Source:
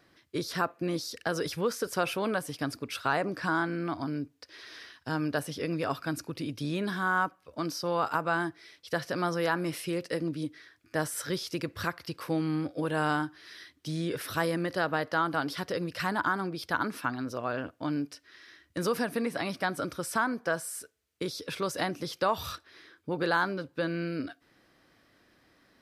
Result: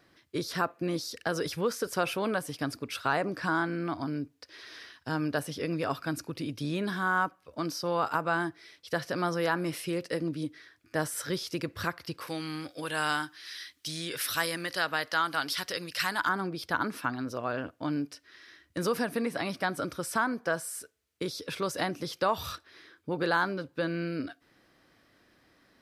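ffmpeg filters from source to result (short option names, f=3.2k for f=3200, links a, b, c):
-filter_complex "[0:a]asettb=1/sr,asplit=3[a][b][c];[a]atrim=end=12.274[d];[b]atrim=start=12.27:end=16.29,asetpts=PTS-STARTPTS,afade=t=in:d=0.004:c=qsin,afade=t=out:st=4.016:d=0.004:c=qsin,tiltshelf=f=1.2k:g=-9[e];[c]atrim=start=16.286[f];[d][e]acrossfade=d=0.004:c1=hsin:c2=qsin[g];[g][f]acrossfade=d=0.004:c1=qsin:c2=hsin"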